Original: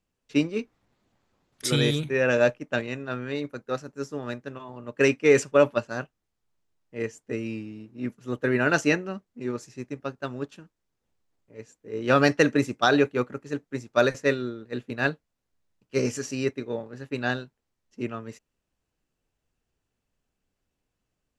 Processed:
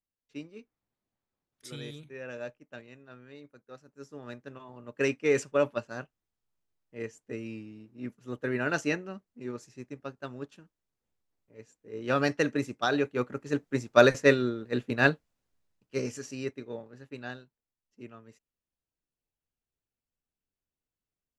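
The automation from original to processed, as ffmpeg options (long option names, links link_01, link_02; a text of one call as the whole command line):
ffmpeg -i in.wav -af "volume=2.5dB,afade=type=in:start_time=3.81:duration=0.72:silence=0.266073,afade=type=in:start_time=13.07:duration=0.56:silence=0.334965,afade=type=out:start_time=15.11:duration=0.95:silence=0.298538,afade=type=out:start_time=16.76:duration=0.64:silence=0.473151" out.wav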